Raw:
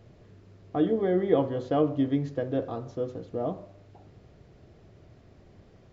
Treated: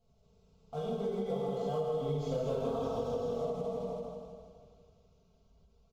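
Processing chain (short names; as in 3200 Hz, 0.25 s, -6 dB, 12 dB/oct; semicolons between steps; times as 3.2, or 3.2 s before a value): Doppler pass-by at 2.46, 9 m/s, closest 1.8 m; sample leveller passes 1; bell 780 Hz -4.5 dB 1.2 oct; fixed phaser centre 750 Hz, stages 4; comb 4.5 ms, depth 80%; feedback echo 0.162 s, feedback 47%, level -5.5 dB; plate-style reverb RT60 1.9 s, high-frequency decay 1×, DRR -8 dB; compressor 6:1, threshold -38 dBFS, peak gain reduction 15.5 dB; ending taper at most 150 dB/s; gain +6.5 dB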